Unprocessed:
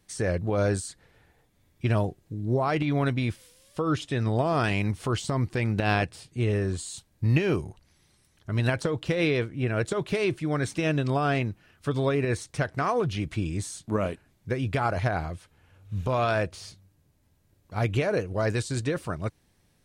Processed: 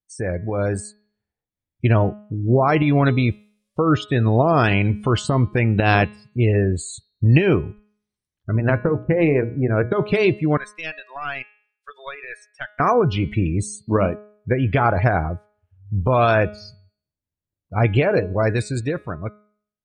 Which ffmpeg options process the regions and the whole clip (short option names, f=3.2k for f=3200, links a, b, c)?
-filter_complex "[0:a]asettb=1/sr,asplit=3[a][b][c];[a]atrim=end=8.564[d];[b]atrim=start=8.56:end=9.92,asetpts=PTS-STARTPTS,afade=t=in:d=0.004:c=qsin,afade=t=out:st=1.356:d=0.004:c=qsin,lowpass=2.7k,bandreject=f=60:t=h:w=6,bandreject=f=120:t=h:w=6,bandreject=f=180:t=h:w=6,bandreject=f=240:t=h:w=6,bandreject=f=300:t=h:w=6,bandreject=f=360:t=h:w=6,bandreject=f=420:t=h:w=6,bandreject=f=480:t=h:w=6,adynamicsmooth=sensitivity=1.5:basefreq=1.2k[e];[c]atrim=start=9.916[f];[d][e]acrossfade=d=0.004:c1=hsin:c2=qsin[g];[g][f]acrossfade=d=0.004:c1=qsin:c2=hsin,asettb=1/sr,asplit=3[h][i][j];[h]atrim=end=10.574[k];[i]atrim=start=10.57:end=12.8,asetpts=PTS-STARTPTS,afade=t=in:d=0.004:c=qsin,afade=t=out:st=2.226:d=0.004:c=qsin,highpass=1.2k,aeval=exprs='(tanh(12.6*val(0)+0.8)-tanh(0.8))/12.6':c=same[l];[j]atrim=start=12.796[m];[k][l]acrossfade=d=0.004:c1=hsin:c2=qsin[n];[n][m]acrossfade=d=0.004:c1=qsin:c2=hsin,afftdn=nr=32:nf=-39,bandreject=f=209.2:t=h:w=4,bandreject=f=418.4:t=h:w=4,bandreject=f=627.6:t=h:w=4,bandreject=f=836.8:t=h:w=4,bandreject=f=1.046k:t=h:w=4,bandreject=f=1.2552k:t=h:w=4,bandreject=f=1.4644k:t=h:w=4,bandreject=f=1.6736k:t=h:w=4,bandreject=f=1.8828k:t=h:w=4,bandreject=f=2.092k:t=h:w=4,bandreject=f=2.3012k:t=h:w=4,bandreject=f=2.5104k:t=h:w=4,bandreject=f=2.7196k:t=h:w=4,bandreject=f=2.9288k:t=h:w=4,bandreject=f=3.138k:t=h:w=4,bandreject=f=3.3472k:t=h:w=4,bandreject=f=3.5564k:t=h:w=4,bandreject=f=3.7656k:t=h:w=4,bandreject=f=3.9748k:t=h:w=4,bandreject=f=4.184k:t=h:w=4,bandreject=f=4.3932k:t=h:w=4,bandreject=f=4.6024k:t=h:w=4,dynaudnorm=f=130:g=21:m=7dB,volume=2dB"